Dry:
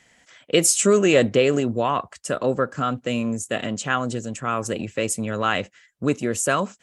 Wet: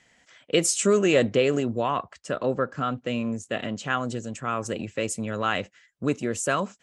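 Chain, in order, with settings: low-pass 8.2 kHz 12 dB/octave, from 1.99 s 5.1 kHz, from 3.83 s 8.5 kHz; trim -3.5 dB

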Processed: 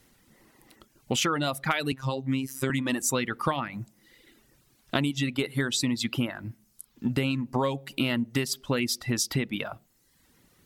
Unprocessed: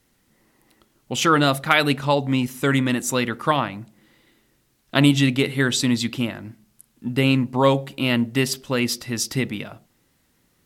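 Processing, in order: reverb removal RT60 0.75 s; compression 16:1, threshold -27 dBFS, peak gain reduction 16.5 dB; 1.92–2.70 s: robot voice 133 Hz; trim +4 dB

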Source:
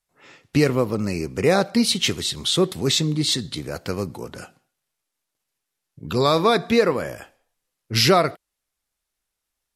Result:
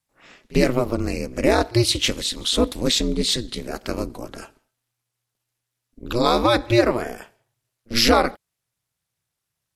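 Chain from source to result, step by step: pre-echo 47 ms -24 dB; ring modulator 120 Hz; trim +3 dB

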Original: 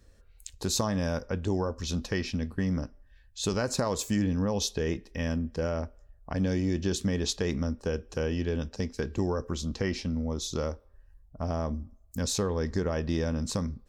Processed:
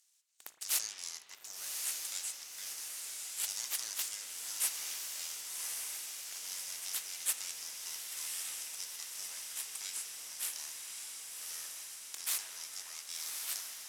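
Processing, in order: tilt EQ +4.5 dB/octave; full-wave rectifier; band-pass filter 7.2 kHz, Q 1.6; echo that smears into a reverb 1126 ms, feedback 68%, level -3 dB; spring tank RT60 2.3 s, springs 38/54 ms, chirp 30 ms, DRR 8 dB

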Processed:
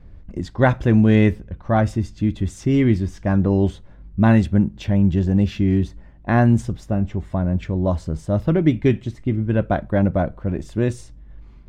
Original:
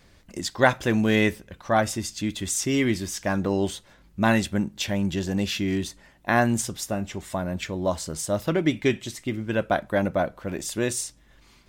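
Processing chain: RIAA curve playback; tape noise reduction on one side only decoder only

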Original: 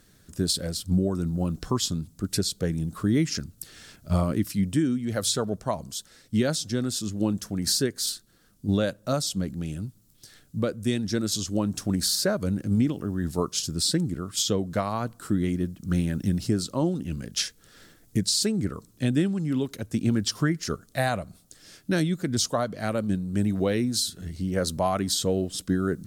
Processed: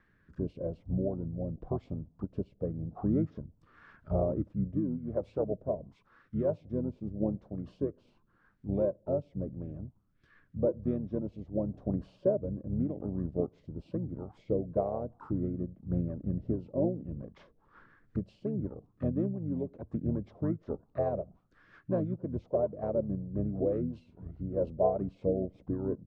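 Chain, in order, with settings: rotary cabinet horn 0.9 Hz, later 5.5 Hz, at 14.50 s; harmony voices -7 st -4 dB; touch-sensitive low-pass 600–1800 Hz down, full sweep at -28 dBFS; trim -9 dB

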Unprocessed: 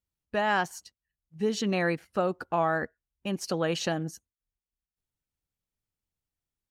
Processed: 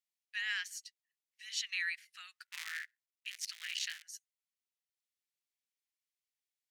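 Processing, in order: 2.46–4.03 s: cycle switcher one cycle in 3, muted; elliptic high-pass 1.9 kHz, stop band 80 dB; treble shelf 11 kHz -6 dB

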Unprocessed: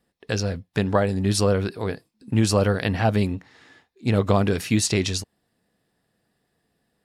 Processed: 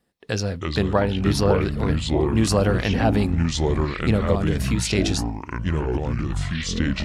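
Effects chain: 0.97–1.61 s: peaking EQ 8.1 kHz -13 dB 0.45 oct; 4.16–4.93 s: compression 4:1, threshold -22 dBFS, peak gain reduction 7 dB; ever faster or slower copies 223 ms, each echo -5 st, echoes 3

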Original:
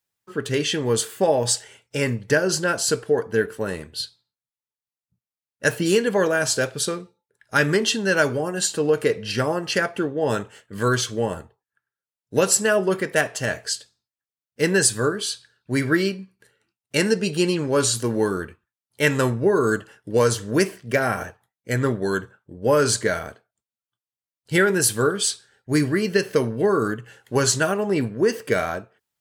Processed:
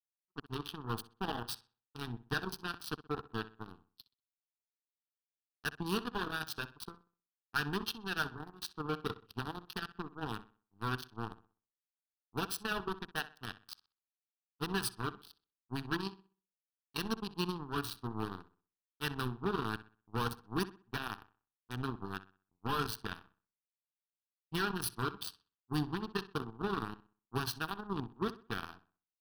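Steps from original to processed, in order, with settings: local Wiener filter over 25 samples; in parallel at +0.5 dB: peak limiter -16.5 dBFS, peak gain reduction 11.5 dB; on the sum: power-law waveshaper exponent 3; overload inside the chain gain 20.5 dB; static phaser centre 2.1 kHz, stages 6; on a send: filtered feedback delay 63 ms, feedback 34%, low-pass 3.7 kHz, level -15 dB; on the sum: trim +1 dB

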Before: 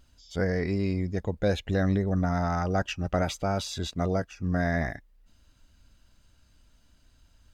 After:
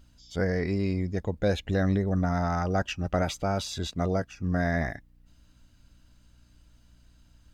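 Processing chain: hum 60 Hz, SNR 32 dB

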